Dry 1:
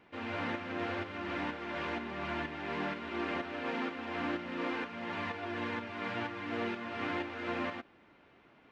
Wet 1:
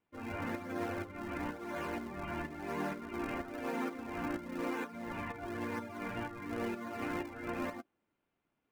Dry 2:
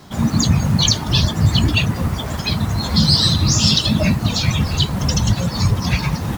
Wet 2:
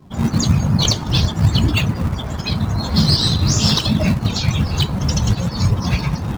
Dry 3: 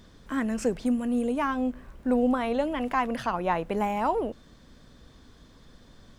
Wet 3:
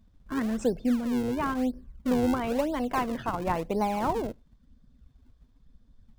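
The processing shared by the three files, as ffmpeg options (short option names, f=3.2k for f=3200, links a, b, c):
-filter_complex "[0:a]afftdn=nr=20:nf=-40,equalizer=f=1.9k:t=o:w=0.28:g=-3,asplit=2[a][b];[b]acrusher=samples=42:mix=1:aa=0.000001:lfo=1:lforange=67.2:lforate=0.98,volume=-8dB[c];[a][c]amix=inputs=2:normalize=0,volume=-2.5dB"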